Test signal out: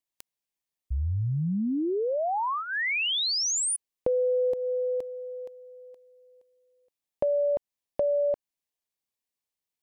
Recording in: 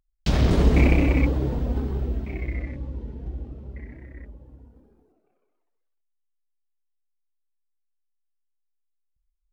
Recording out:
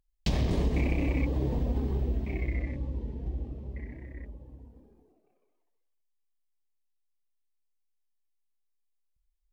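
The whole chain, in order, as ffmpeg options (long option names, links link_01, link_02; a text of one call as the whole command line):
ffmpeg -i in.wav -af "equalizer=frequency=1400:width=5.7:gain=-12.5,acompressor=threshold=-23dB:ratio=5,volume=-1dB" out.wav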